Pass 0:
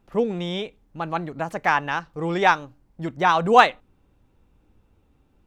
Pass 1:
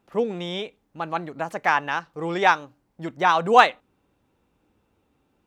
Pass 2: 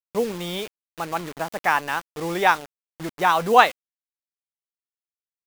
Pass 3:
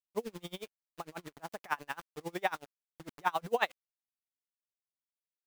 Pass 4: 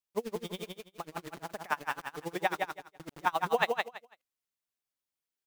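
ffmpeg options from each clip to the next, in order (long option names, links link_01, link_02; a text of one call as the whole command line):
ffmpeg -i in.wav -af "highpass=frequency=250:poles=1" out.wav
ffmpeg -i in.wav -af "acrusher=bits=5:mix=0:aa=0.000001" out.wav
ffmpeg -i in.wav -af "aeval=exprs='val(0)*pow(10,-31*(0.5-0.5*cos(2*PI*11*n/s))/20)':channel_layout=same,volume=-8dB" out.wav
ffmpeg -i in.wav -af "aecho=1:1:166|332|498:0.631|0.126|0.0252,volume=2dB" out.wav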